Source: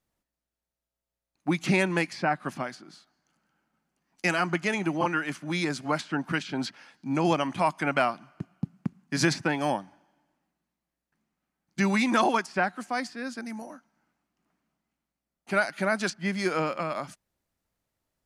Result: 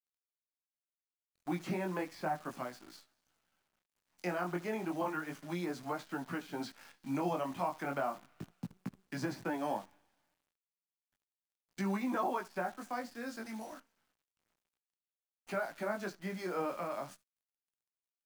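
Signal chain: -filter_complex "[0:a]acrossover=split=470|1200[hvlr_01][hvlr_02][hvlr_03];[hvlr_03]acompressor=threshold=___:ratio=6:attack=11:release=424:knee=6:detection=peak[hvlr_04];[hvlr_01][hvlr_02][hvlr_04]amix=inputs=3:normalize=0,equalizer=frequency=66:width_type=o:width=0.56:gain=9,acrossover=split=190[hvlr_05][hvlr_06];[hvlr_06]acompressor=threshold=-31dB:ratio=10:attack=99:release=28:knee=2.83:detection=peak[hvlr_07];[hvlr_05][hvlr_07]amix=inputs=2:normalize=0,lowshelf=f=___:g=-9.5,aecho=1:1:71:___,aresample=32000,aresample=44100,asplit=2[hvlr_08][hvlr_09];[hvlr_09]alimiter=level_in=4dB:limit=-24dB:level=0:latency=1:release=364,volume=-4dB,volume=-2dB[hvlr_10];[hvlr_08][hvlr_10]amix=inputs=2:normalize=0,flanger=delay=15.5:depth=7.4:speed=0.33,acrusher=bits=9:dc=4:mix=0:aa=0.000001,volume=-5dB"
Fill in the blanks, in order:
-44dB, 260, 0.0891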